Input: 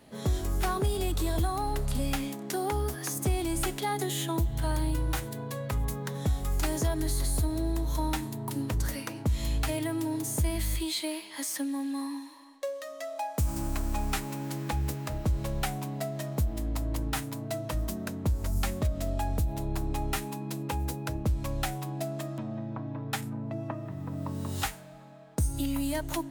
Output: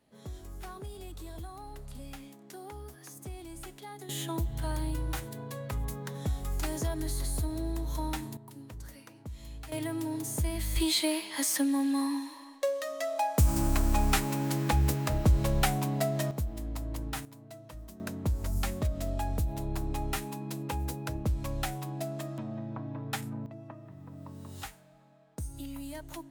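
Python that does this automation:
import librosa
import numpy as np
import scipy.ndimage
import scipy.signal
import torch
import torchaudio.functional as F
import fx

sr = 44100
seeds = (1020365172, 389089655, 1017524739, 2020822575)

y = fx.gain(x, sr, db=fx.steps((0.0, -14.5), (4.09, -4.0), (8.37, -15.0), (9.72, -3.0), (10.76, 4.5), (16.31, -5.0), (17.25, -14.5), (18.0, -2.0), (23.46, -10.5)))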